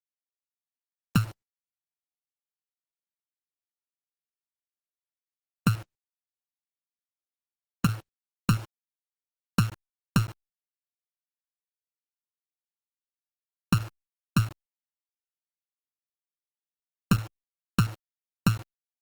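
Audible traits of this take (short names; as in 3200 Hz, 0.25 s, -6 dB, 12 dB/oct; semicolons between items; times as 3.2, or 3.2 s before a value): a buzz of ramps at a fixed pitch in blocks of 32 samples; chopped level 7.1 Hz, depth 65%, duty 85%; a quantiser's noise floor 6-bit, dither none; Opus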